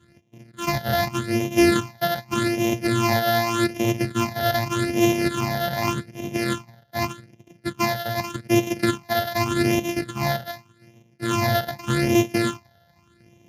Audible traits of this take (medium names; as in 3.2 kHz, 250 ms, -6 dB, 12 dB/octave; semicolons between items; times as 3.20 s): a buzz of ramps at a fixed pitch in blocks of 128 samples; phasing stages 8, 0.84 Hz, lowest notch 320–1400 Hz; Speex